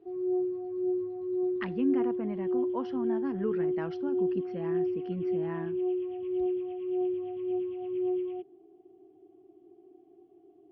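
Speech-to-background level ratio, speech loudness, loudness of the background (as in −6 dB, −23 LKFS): −4.0 dB, −36.0 LKFS, −32.0 LKFS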